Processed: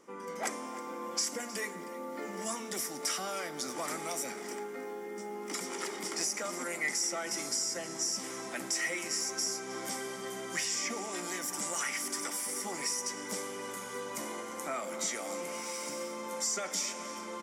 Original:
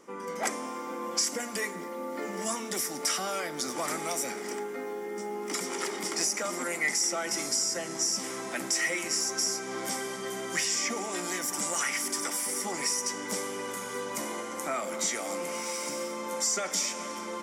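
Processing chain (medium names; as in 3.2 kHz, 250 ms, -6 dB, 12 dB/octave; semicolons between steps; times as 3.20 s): delay 314 ms -17.5 dB; trim -4.5 dB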